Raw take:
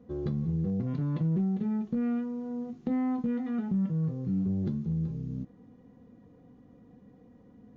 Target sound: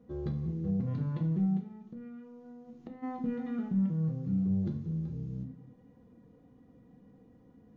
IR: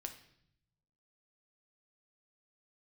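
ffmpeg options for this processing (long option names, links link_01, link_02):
-filter_complex "[0:a]asplit=3[link_01][link_02][link_03];[link_01]afade=type=out:start_time=1.59:duration=0.02[link_04];[link_02]acompressor=threshold=-40dB:ratio=6,afade=type=in:start_time=1.59:duration=0.02,afade=type=out:start_time=3.02:duration=0.02[link_05];[link_03]afade=type=in:start_time=3.02:duration=0.02[link_06];[link_04][link_05][link_06]amix=inputs=3:normalize=0[link_07];[1:a]atrim=start_sample=2205,afade=type=out:start_time=0.38:duration=0.01,atrim=end_sample=17199[link_08];[link_07][link_08]afir=irnorm=-1:irlink=0"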